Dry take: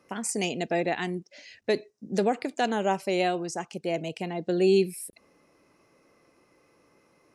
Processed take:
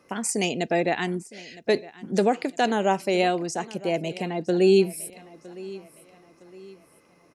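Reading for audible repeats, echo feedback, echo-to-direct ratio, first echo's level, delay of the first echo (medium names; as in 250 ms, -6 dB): 2, 40%, -19.0 dB, -19.5 dB, 961 ms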